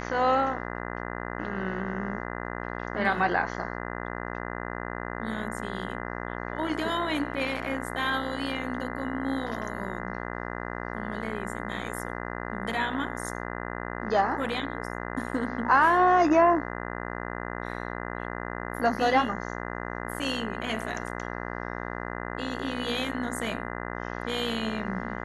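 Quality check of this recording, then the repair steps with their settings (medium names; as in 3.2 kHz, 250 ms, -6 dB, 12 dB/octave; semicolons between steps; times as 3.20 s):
buzz 60 Hz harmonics 34 -35 dBFS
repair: de-hum 60 Hz, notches 34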